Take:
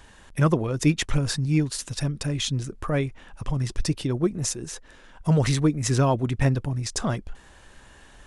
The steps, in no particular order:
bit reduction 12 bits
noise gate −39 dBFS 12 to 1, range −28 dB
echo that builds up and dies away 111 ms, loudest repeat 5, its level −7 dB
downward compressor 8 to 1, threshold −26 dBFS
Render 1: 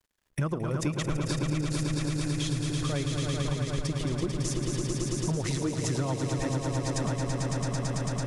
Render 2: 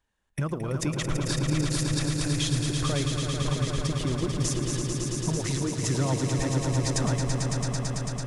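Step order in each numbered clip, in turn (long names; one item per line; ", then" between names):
noise gate, then bit reduction, then echo that builds up and dies away, then downward compressor
downward compressor, then bit reduction, then noise gate, then echo that builds up and dies away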